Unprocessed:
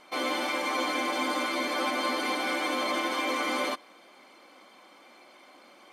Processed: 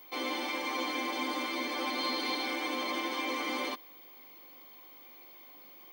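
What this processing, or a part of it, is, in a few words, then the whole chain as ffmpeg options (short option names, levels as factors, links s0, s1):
old television with a line whistle: -filter_complex "[0:a]highpass=f=210:w=0.5412,highpass=f=210:w=1.3066,equalizer=f=630:t=q:w=4:g=-8,equalizer=f=1400:t=q:w=4:g=-10,equalizer=f=7500:t=q:w=4:g=-7,lowpass=f=8900:w=0.5412,lowpass=f=8900:w=1.3066,aeval=exprs='val(0)+0.00398*sin(2*PI*15625*n/s)':c=same,asettb=1/sr,asplit=3[s0][s1][s2];[s0]atrim=end=1.904[s3];[s1]atrim=start=1.9:end=2.47,asetpts=PTS-STARTPTS,afade=t=in:d=0.004:c=qsin,afade=t=out:st=0.566:d=0.004:c=qsin,equalizer=f=4100:w=4.1:g=7.5[s4];[s2]atrim=start=2.466[s5];[s3][s4]acrossfade=d=0.004:c1=hsin:c2=qsin[s6];[s6][s5]acrossfade=d=0.004:c1=qsin:c2=hsin,volume=0.708"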